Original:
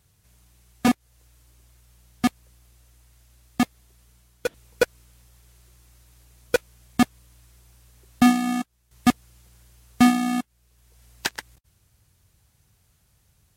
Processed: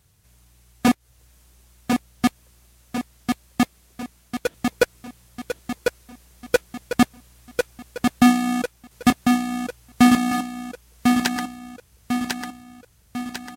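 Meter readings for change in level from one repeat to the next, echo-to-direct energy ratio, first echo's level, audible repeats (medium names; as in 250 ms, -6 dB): -6.0 dB, -3.0 dB, -4.0 dB, 6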